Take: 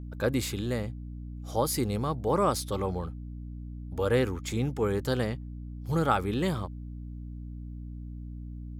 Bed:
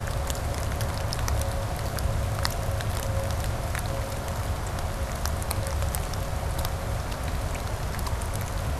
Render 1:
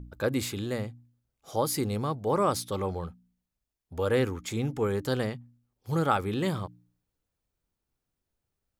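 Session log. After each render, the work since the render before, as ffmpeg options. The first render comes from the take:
ffmpeg -i in.wav -af "bandreject=frequency=60:width_type=h:width=4,bandreject=frequency=120:width_type=h:width=4,bandreject=frequency=180:width_type=h:width=4,bandreject=frequency=240:width_type=h:width=4,bandreject=frequency=300:width_type=h:width=4" out.wav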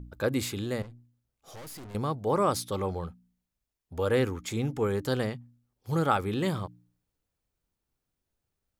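ffmpeg -i in.wav -filter_complex "[0:a]asettb=1/sr,asplit=3[link_01][link_02][link_03];[link_01]atrim=end=0.824[link_04];[link_02]atrim=start=0.82:end=1.95,asetpts=PTS-STARTPTS,afade=type=in:duration=0.004:curve=qsin,afade=type=out:start_time=1.126:duration=0.004:curve=qsin,aeval=exprs='(tanh(141*val(0)+0.4)-tanh(0.4))/141':channel_layout=same[link_05];[link_03]atrim=start=1.946[link_06];[link_04][link_05]acrossfade=duration=0.004:curve1=hsin:curve2=qsin[link_07];[link_07][link_06]acrossfade=duration=0.004:curve1=qsin:curve2=hsin" out.wav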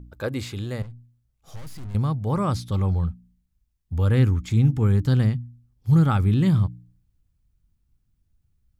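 ffmpeg -i in.wav -filter_complex "[0:a]acrossover=split=6300[link_01][link_02];[link_02]acompressor=threshold=-49dB:ratio=4:attack=1:release=60[link_03];[link_01][link_03]amix=inputs=2:normalize=0,asubboost=boost=11.5:cutoff=150" out.wav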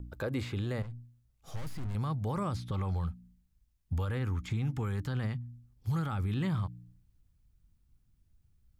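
ffmpeg -i in.wav -filter_complex "[0:a]acrossover=split=680|1500|3000[link_01][link_02][link_03][link_04];[link_01]acompressor=threshold=-30dB:ratio=4[link_05];[link_02]acompressor=threshold=-38dB:ratio=4[link_06];[link_03]acompressor=threshold=-46dB:ratio=4[link_07];[link_04]acompressor=threshold=-55dB:ratio=4[link_08];[link_05][link_06][link_07][link_08]amix=inputs=4:normalize=0,alimiter=level_in=0.5dB:limit=-24dB:level=0:latency=1:release=22,volume=-0.5dB" out.wav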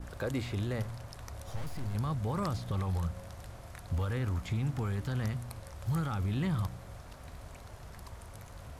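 ffmpeg -i in.wav -i bed.wav -filter_complex "[1:a]volume=-18dB[link_01];[0:a][link_01]amix=inputs=2:normalize=0" out.wav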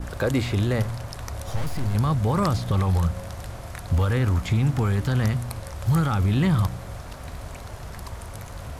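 ffmpeg -i in.wav -af "volume=11dB" out.wav

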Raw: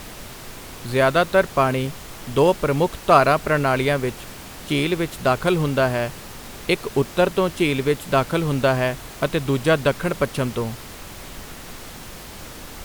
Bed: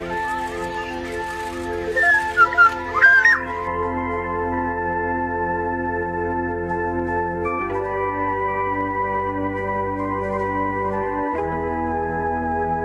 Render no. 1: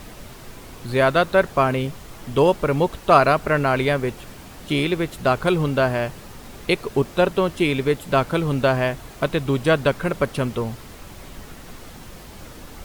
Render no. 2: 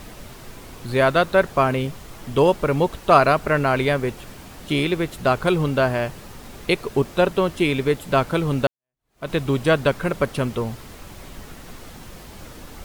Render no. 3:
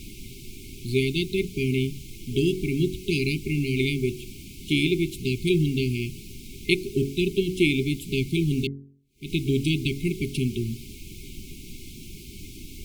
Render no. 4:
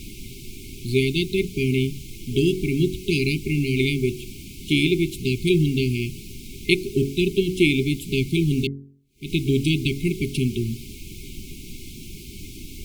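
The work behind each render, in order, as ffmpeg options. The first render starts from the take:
ffmpeg -i in.wav -af "afftdn=noise_reduction=6:noise_floor=-38" out.wav
ffmpeg -i in.wav -filter_complex "[0:a]asplit=2[link_01][link_02];[link_01]atrim=end=8.67,asetpts=PTS-STARTPTS,afade=type=out:start_time=8.666:duration=0.004:curve=hsin[link_03];[link_02]atrim=start=8.67,asetpts=PTS-STARTPTS,afade=type=in:duration=0.63:curve=exp[link_04];[link_03][link_04]concat=n=2:v=0:a=1" out.wav
ffmpeg -i in.wav -af "afftfilt=real='re*(1-between(b*sr/4096,410,2100))':imag='im*(1-between(b*sr/4096,410,2100))':win_size=4096:overlap=0.75,bandreject=frequency=46.28:width_type=h:width=4,bandreject=frequency=92.56:width_type=h:width=4,bandreject=frequency=138.84:width_type=h:width=4,bandreject=frequency=185.12:width_type=h:width=4,bandreject=frequency=231.4:width_type=h:width=4,bandreject=frequency=277.68:width_type=h:width=4,bandreject=frequency=323.96:width_type=h:width=4,bandreject=frequency=370.24:width_type=h:width=4,bandreject=frequency=416.52:width_type=h:width=4,bandreject=frequency=462.8:width_type=h:width=4,bandreject=frequency=509.08:width_type=h:width=4,bandreject=frequency=555.36:width_type=h:width=4,bandreject=frequency=601.64:width_type=h:width=4,bandreject=frequency=647.92:width_type=h:width=4,bandreject=frequency=694.2:width_type=h:width=4,bandreject=frequency=740.48:width_type=h:width=4,bandreject=frequency=786.76:width_type=h:width=4" out.wav
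ffmpeg -i in.wav -af "volume=3dB" out.wav

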